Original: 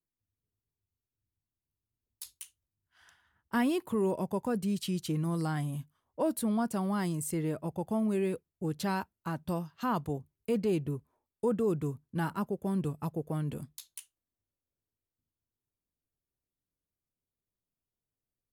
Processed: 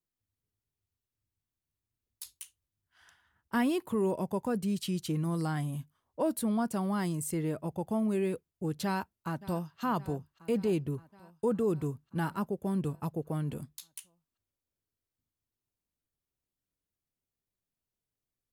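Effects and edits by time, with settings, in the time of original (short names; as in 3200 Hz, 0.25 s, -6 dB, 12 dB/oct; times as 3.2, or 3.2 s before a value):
8.84–9.81 echo throw 0.57 s, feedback 70%, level -17.5 dB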